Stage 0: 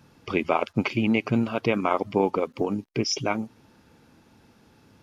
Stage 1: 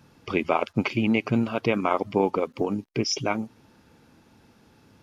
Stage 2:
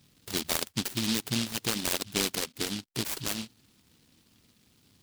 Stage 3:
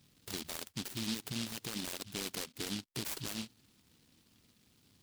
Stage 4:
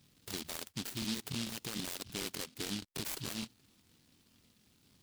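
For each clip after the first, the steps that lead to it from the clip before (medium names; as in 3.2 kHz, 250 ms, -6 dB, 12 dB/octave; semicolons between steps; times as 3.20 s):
no audible change
delay time shaken by noise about 3.7 kHz, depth 0.45 ms; trim -7 dB
peak limiter -25.5 dBFS, peak gain reduction 11.5 dB; trim -4 dB
crackling interface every 0.15 s, samples 1024, repeat, from 0.85 s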